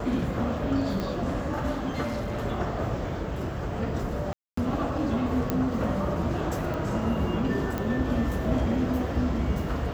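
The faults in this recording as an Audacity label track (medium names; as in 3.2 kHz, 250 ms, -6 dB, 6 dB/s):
1.000000	1.000000	pop -17 dBFS
2.020000	2.440000	clipped -27 dBFS
4.330000	4.570000	dropout 244 ms
5.500000	5.500000	pop -12 dBFS
6.740000	6.740000	pop -21 dBFS
7.780000	7.780000	pop -16 dBFS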